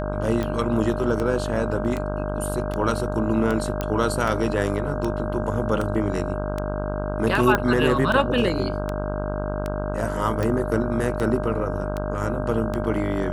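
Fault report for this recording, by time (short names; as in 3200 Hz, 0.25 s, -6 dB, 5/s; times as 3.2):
buzz 50 Hz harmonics 32 -28 dBFS
tick 78 rpm -14 dBFS
tone 610 Hz -30 dBFS
3.81 pop -11 dBFS
7.55 pop -7 dBFS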